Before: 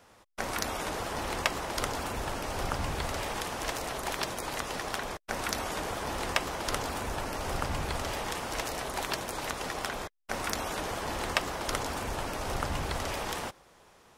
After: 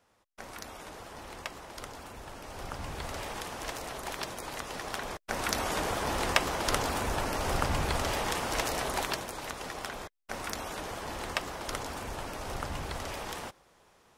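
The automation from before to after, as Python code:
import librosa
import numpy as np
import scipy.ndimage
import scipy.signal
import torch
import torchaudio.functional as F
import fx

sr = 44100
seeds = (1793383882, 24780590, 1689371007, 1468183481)

y = fx.gain(x, sr, db=fx.line((2.23, -11.0), (3.16, -4.0), (4.67, -4.0), (5.73, 3.0), (8.93, 3.0), (9.35, -4.0)))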